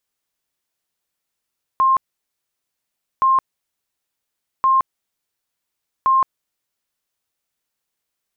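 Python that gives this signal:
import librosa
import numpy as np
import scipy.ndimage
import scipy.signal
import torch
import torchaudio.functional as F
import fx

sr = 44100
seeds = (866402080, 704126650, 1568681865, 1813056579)

y = fx.tone_burst(sr, hz=1060.0, cycles=178, every_s=1.42, bursts=4, level_db=-11.5)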